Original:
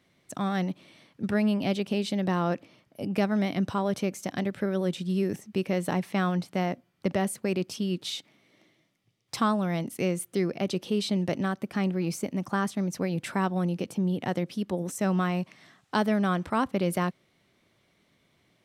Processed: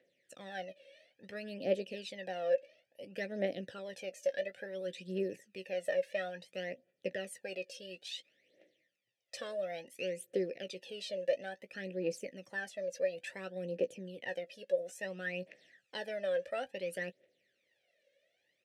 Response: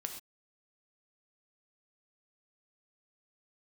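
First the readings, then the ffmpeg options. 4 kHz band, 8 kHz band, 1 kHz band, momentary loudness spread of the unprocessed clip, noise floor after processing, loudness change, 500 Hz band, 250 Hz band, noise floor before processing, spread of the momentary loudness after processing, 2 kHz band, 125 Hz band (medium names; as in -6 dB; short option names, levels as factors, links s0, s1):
-8.5 dB, -12.0 dB, -17.0 dB, 6 LU, -80 dBFS, -10.0 dB, -4.5 dB, -19.5 dB, -69 dBFS, 10 LU, -6.5 dB, -21.5 dB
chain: -filter_complex "[0:a]aphaser=in_gain=1:out_gain=1:delay=1.9:decay=0.73:speed=0.58:type=triangular,asplit=3[s0][s1][s2];[s0]bandpass=f=530:t=q:w=8,volume=1[s3];[s1]bandpass=f=1840:t=q:w=8,volume=0.501[s4];[s2]bandpass=f=2480:t=q:w=8,volume=0.355[s5];[s3][s4][s5]amix=inputs=3:normalize=0,bass=f=250:g=-3,treble=f=4000:g=14,asplit=2[s6][s7];[s7]adelay=16,volume=0.266[s8];[s6][s8]amix=inputs=2:normalize=0"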